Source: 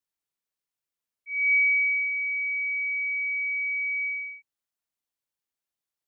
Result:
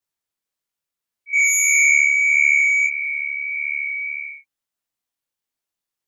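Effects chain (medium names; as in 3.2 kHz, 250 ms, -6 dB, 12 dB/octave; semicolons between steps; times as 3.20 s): 1.33–2.87 s: sine folder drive 7 dB, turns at -16.5 dBFS; detune thickener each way 56 cents; trim +7.5 dB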